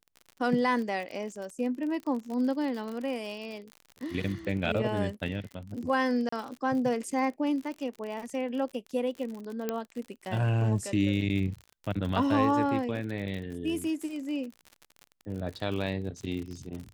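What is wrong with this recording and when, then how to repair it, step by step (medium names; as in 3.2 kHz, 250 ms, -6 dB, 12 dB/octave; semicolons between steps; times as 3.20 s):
crackle 50 per s -36 dBFS
6.29–6.32 s: dropout 34 ms
9.69 s: pop -16 dBFS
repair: de-click; interpolate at 6.29 s, 34 ms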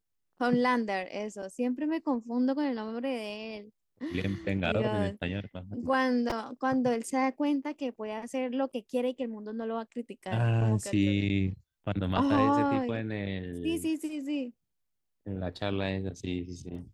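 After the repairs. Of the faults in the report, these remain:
nothing left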